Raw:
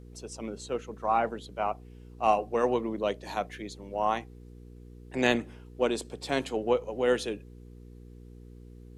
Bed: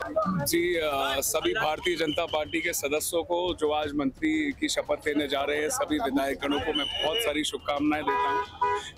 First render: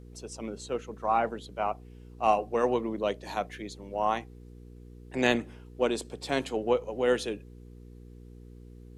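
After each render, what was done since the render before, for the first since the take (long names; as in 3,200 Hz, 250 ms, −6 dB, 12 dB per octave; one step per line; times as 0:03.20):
no processing that can be heard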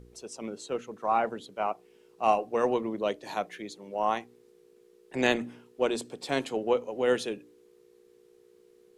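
hum removal 60 Hz, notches 5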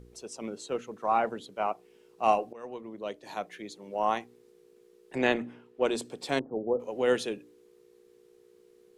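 0:02.53–0:03.94: fade in linear, from −21.5 dB
0:05.18–0:05.85: bass and treble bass −2 dB, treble −12 dB
0:06.39–0:06.80: Gaussian smoothing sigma 11 samples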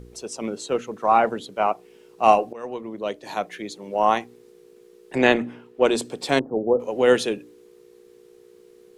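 level +8.5 dB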